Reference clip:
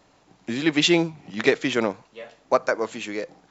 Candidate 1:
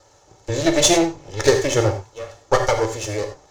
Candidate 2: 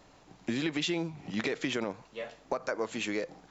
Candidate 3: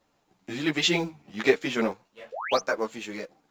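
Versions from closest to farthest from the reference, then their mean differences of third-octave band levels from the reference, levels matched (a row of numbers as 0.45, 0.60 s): 3, 2, 1; 3.5, 5.0, 8.0 dB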